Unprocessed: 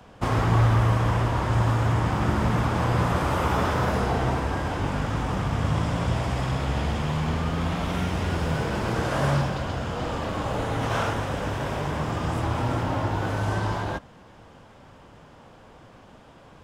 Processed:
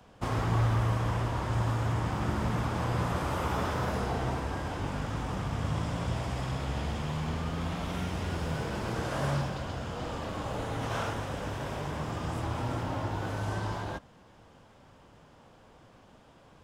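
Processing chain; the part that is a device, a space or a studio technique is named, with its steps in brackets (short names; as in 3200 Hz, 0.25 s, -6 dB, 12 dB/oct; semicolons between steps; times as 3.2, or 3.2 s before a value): exciter from parts (in parallel at -9.5 dB: HPF 2700 Hz 12 dB/oct + soft clip -32.5 dBFS, distortion -21 dB); on the sum: gain -7 dB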